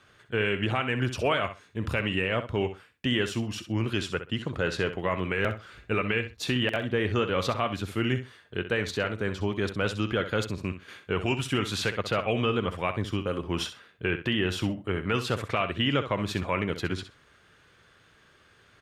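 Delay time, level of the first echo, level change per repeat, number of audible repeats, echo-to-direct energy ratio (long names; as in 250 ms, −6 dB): 64 ms, −11.0 dB, −15.0 dB, 2, −11.0 dB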